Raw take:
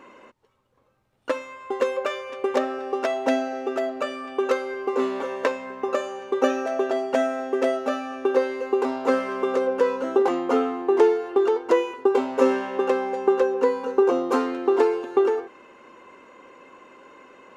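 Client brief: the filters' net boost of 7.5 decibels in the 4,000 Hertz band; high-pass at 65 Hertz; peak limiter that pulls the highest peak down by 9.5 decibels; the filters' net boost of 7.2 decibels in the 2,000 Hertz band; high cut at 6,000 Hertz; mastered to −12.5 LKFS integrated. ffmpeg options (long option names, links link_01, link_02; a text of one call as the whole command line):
ffmpeg -i in.wav -af "highpass=65,lowpass=6000,equalizer=frequency=2000:width_type=o:gain=7.5,equalizer=frequency=4000:width_type=o:gain=7.5,volume=12.5dB,alimiter=limit=-1dB:level=0:latency=1" out.wav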